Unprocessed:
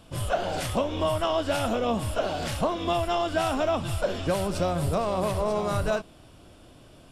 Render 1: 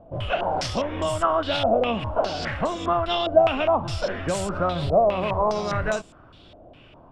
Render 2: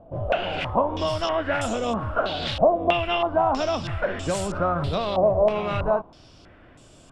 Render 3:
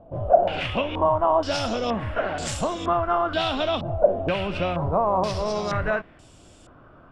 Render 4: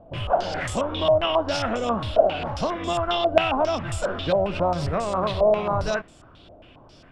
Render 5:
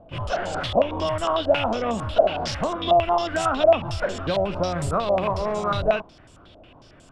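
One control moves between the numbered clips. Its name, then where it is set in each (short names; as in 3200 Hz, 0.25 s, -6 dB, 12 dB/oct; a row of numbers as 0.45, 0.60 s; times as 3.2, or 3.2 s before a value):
stepped low-pass, rate: 4.9, 3.1, 2.1, 7.4, 11 Hz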